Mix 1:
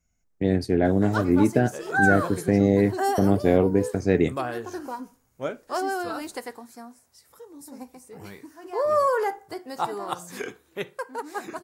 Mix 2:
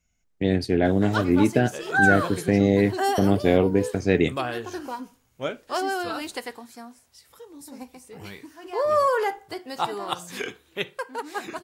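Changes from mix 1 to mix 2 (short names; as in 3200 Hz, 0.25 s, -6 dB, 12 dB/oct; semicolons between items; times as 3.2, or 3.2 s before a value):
background: add low shelf 62 Hz +8.5 dB; master: add bell 3100 Hz +9.5 dB 1.1 oct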